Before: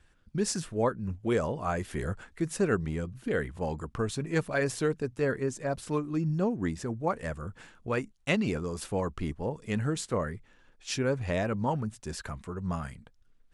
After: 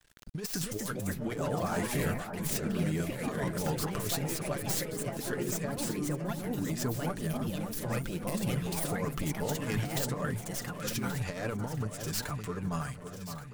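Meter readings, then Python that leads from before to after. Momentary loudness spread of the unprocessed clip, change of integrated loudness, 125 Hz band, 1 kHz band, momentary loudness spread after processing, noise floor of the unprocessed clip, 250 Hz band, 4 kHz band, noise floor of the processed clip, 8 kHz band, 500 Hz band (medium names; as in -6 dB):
9 LU, -2.0 dB, -0.5 dB, -3.0 dB, 4 LU, -62 dBFS, -2.0 dB, +2.0 dB, -43 dBFS, +4.0 dB, -5.5 dB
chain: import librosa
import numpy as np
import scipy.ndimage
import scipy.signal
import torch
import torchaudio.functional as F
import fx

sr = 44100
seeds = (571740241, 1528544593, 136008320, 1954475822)

p1 = fx.tracing_dist(x, sr, depth_ms=0.16)
p2 = fx.spec_box(p1, sr, start_s=7.05, length_s=1.8, low_hz=230.0, high_hz=8500.0, gain_db=-11)
p3 = fx.high_shelf(p2, sr, hz=3800.0, db=9.5)
p4 = p3 + 0.62 * np.pad(p3, (int(6.8 * sr / 1000.0), 0))[:len(p3)]
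p5 = fx.over_compress(p4, sr, threshold_db=-30.0, ratio=-0.5)
p6 = fx.echo_pitch(p5, sr, ms=341, semitones=3, count=2, db_per_echo=-3.0)
p7 = np.sign(p6) * np.maximum(np.abs(p6) - 10.0 ** (-53.5 / 20.0), 0.0)
p8 = p7 + fx.echo_alternate(p7, sr, ms=564, hz=1500.0, feedback_pct=66, wet_db=-8, dry=0)
p9 = fx.pre_swell(p8, sr, db_per_s=120.0)
y = F.gain(torch.from_numpy(p9), -3.5).numpy()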